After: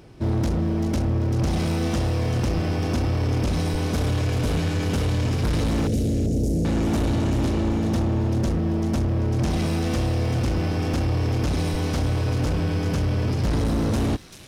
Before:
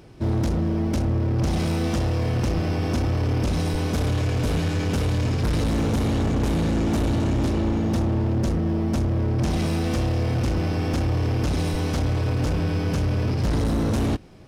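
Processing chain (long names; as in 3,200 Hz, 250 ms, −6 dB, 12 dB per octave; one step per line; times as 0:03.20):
0:05.87–0:06.65: inverse Chebyshev band-stop filter 1,100–3,000 Hz, stop band 50 dB
on a send: delay with a high-pass on its return 389 ms, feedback 31%, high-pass 2,600 Hz, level −7 dB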